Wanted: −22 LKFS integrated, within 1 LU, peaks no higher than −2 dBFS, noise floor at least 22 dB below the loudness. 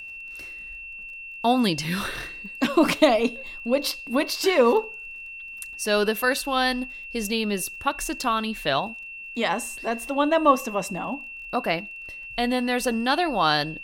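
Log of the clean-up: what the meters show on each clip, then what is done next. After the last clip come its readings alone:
crackle rate 22 per second; interfering tone 2,700 Hz; level of the tone −36 dBFS; integrated loudness −24.0 LKFS; sample peak −3.0 dBFS; target loudness −22.0 LKFS
→ click removal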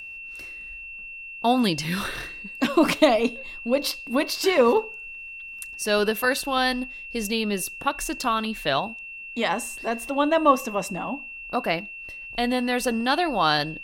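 crackle rate 0.14 per second; interfering tone 2,700 Hz; level of the tone −36 dBFS
→ notch filter 2,700 Hz, Q 30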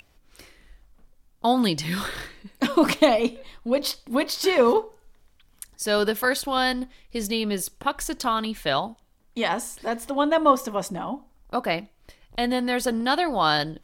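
interfering tone none found; integrated loudness −24.0 LKFS; sample peak −3.0 dBFS; target loudness −22.0 LKFS
→ level +2 dB
brickwall limiter −2 dBFS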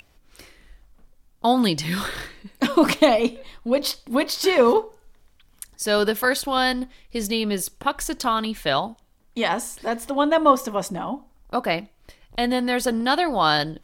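integrated loudness −22.0 LKFS; sample peak −2.0 dBFS; background noise floor −58 dBFS

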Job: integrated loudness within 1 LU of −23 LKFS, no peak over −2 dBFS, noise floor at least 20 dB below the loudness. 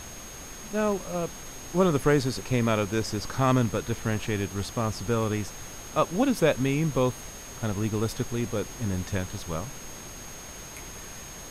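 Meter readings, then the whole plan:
interfering tone 6,500 Hz; level of the tone −44 dBFS; background noise floor −42 dBFS; target noise floor −48 dBFS; integrated loudness −27.5 LKFS; sample peak −9.0 dBFS; target loudness −23.0 LKFS
→ notch filter 6,500 Hz, Q 30
noise reduction from a noise print 6 dB
level +4.5 dB

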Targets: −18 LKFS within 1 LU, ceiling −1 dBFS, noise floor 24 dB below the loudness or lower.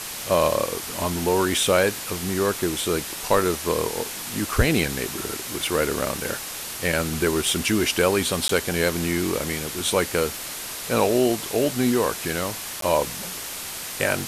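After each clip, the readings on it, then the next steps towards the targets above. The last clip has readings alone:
number of dropouts 2; longest dropout 13 ms; background noise floor −34 dBFS; target noise floor −48 dBFS; integrated loudness −23.5 LKFS; sample peak −3.5 dBFS; target loudness −18.0 LKFS
→ repair the gap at 0:08.48/0:12.81, 13 ms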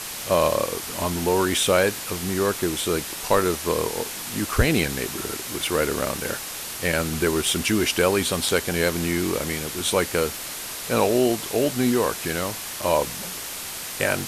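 number of dropouts 0; background noise floor −34 dBFS; target noise floor −48 dBFS
→ noise reduction from a noise print 14 dB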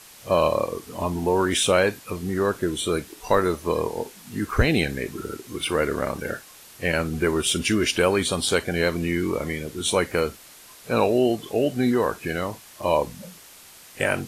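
background noise floor −47 dBFS; target noise floor −48 dBFS
→ noise reduction from a noise print 6 dB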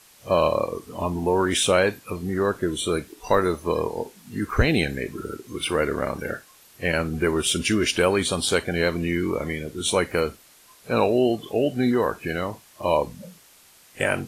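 background noise floor −53 dBFS; integrated loudness −24.0 LKFS; sample peak −4.5 dBFS; target loudness −18.0 LKFS
→ level +6 dB
brickwall limiter −1 dBFS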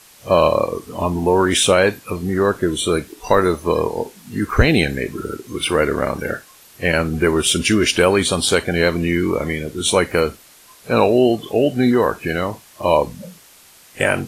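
integrated loudness −18.0 LKFS; sample peak −1.0 dBFS; background noise floor −47 dBFS

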